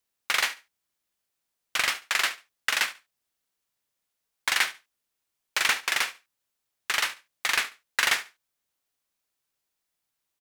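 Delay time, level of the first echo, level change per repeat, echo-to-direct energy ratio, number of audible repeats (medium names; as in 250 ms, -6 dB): 71 ms, -17.0 dB, -14.0 dB, -17.0 dB, 2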